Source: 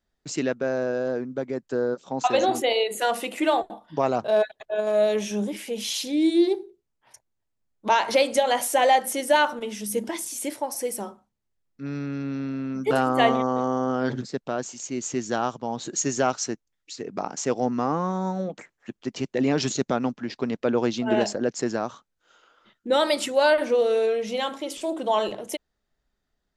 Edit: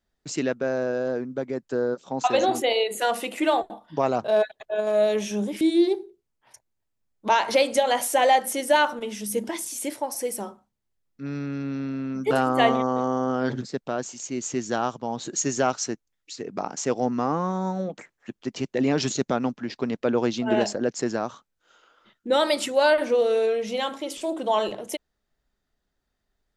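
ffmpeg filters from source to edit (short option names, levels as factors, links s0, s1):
-filter_complex "[0:a]asplit=2[s0][s1];[s0]atrim=end=5.612[s2];[s1]atrim=start=6.208[s3];[s2][s3]acrossfade=d=0.004:c1=hsin:c2=hsin"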